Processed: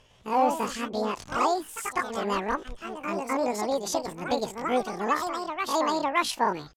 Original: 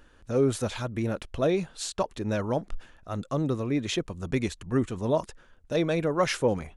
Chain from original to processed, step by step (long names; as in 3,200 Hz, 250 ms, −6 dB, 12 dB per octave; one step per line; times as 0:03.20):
low-pass filter 5,400 Hz 24 dB per octave
low-shelf EQ 61 Hz −8.5 dB
pitch shifter +11 semitones
delay with pitch and tempo change per echo 103 ms, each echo +2 semitones, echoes 2, each echo −6 dB